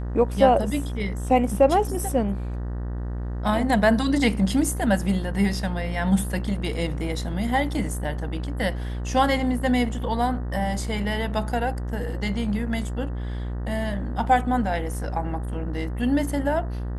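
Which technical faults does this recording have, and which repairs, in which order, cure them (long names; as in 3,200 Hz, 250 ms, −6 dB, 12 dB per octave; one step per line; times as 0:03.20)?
mains buzz 60 Hz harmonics 32 −29 dBFS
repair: hum removal 60 Hz, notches 32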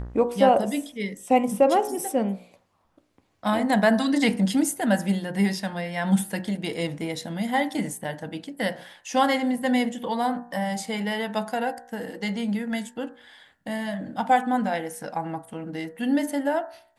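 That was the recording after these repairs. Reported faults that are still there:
none of them is left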